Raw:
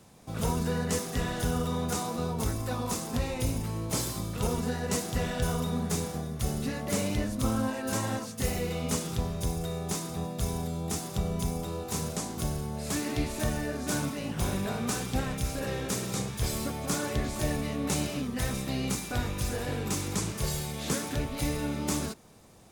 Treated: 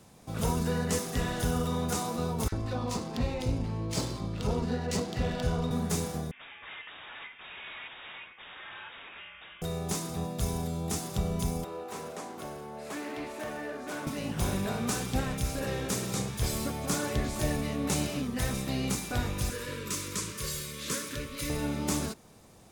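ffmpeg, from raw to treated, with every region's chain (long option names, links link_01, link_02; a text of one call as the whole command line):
ffmpeg -i in.wav -filter_complex "[0:a]asettb=1/sr,asplit=3[link_01][link_02][link_03];[link_01]atrim=end=2.484[link_04];[link_02]atrim=start=2.48:end=5.71,asetpts=PTS-STARTPTS,afade=type=in:duration=0.004:curve=qsin,afade=type=out:start_time=3.226:duration=0.004:curve=qsin,equalizer=frequency=4500:width=5.6:gain=4.5,adynamicsmooth=sensitivity=7.5:basefreq=3000,acrossover=split=1500[link_05][link_06];[link_05]adelay=40[link_07];[link_07][link_06]amix=inputs=2:normalize=0,atrim=end_sample=142443[link_08];[link_03]atrim=start=5.706[link_09];[link_04][link_08]acrossfade=duration=0.004:curve1=hsin:curve2=qsin[link_10];[link_10][link_09]acrossfade=duration=0.004:curve1=qsin:curve2=hsin,asettb=1/sr,asplit=3[link_11][link_12][link_13];[link_11]atrim=end=6.314[link_14];[link_12]atrim=start=6.31:end=9.62,asetpts=PTS-STARTPTS,afade=type=in:duration=0.004:curve=qsin,afade=type=out:start_time=3.306:duration=0.004:curve=qsin,highpass=frequency=1600:width_type=q:width=2,aeval=exprs='(mod(53.1*val(0)+1,2)-1)/53.1':channel_layout=same,lowpass=frequency=3200:width_type=q:width=0.5098,lowpass=frequency=3200:width_type=q:width=0.6013,lowpass=frequency=3200:width_type=q:width=0.9,lowpass=frequency=3200:width_type=q:width=2.563,afreqshift=-3800[link_15];[link_13]atrim=start=9.616[link_16];[link_14][link_15]acrossfade=duration=0.004:curve1=hsin:curve2=qsin[link_17];[link_17][link_16]acrossfade=duration=0.004:curve1=qsin:curve2=hsin,asettb=1/sr,asplit=3[link_18][link_19][link_20];[link_18]atrim=end=11.644[link_21];[link_19]atrim=start=11.64:end=14.07,asetpts=PTS-STARTPTS,afade=type=in:duration=0.004:curve=qsin,afade=type=out:start_time=2.426:duration=0.004:curve=qsin,acrossover=split=290 2700:gain=0.2 1 0.251[link_22][link_23][link_24];[link_22][link_23][link_24]amix=inputs=3:normalize=0,asoftclip=type=hard:threshold=-32dB,highpass=frequency=150:poles=1[link_25];[link_20]atrim=start=14.066[link_26];[link_21][link_25]acrossfade=duration=0.004:curve1=hsin:curve2=qsin[link_27];[link_27][link_26]acrossfade=duration=0.004:curve1=qsin:curve2=hsin,asettb=1/sr,asplit=3[link_28][link_29][link_30];[link_28]atrim=end=19.504[link_31];[link_29]atrim=start=19.5:end=21.5,asetpts=PTS-STARTPTS,afade=type=in:duration=0.004:curve=qsin,afade=type=out:start_time=1.996:duration=0.004:curve=qsin,asuperstop=centerf=750:order=20:qfactor=2.4,lowshelf=frequency=470:gain=-8.5[link_32];[link_30]atrim=start=21.496[link_33];[link_31][link_32]acrossfade=duration=0.004:curve1=hsin:curve2=qsin[link_34];[link_34][link_33]acrossfade=duration=0.004:curve1=qsin:curve2=hsin" out.wav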